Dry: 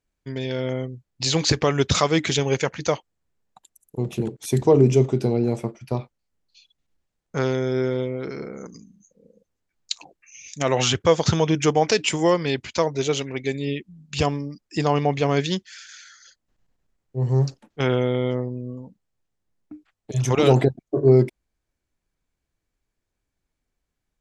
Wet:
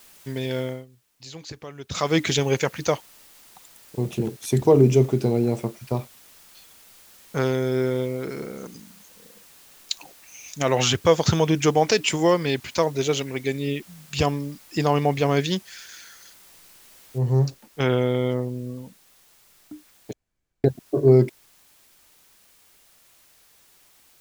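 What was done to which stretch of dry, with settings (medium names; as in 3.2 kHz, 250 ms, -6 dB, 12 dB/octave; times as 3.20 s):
0.58–2.15 s: dip -18.5 dB, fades 0.27 s
17.18 s: noise floor step -51 dB -57 dB
20.13–20.64 s: room tone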